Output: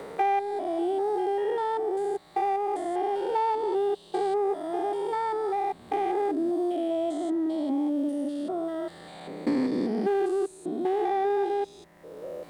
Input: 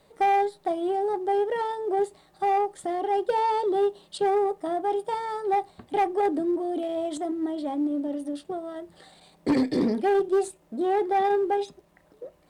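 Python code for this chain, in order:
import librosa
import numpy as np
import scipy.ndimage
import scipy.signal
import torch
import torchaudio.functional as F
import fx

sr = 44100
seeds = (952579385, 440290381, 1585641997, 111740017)

y = fx.spec_steps(x, sr, hold_ms=200)
y = fx.hum_notches(y, sr, base_hz=50, count=3)
y = fx.band_squash(y, sr, depth_pct=70)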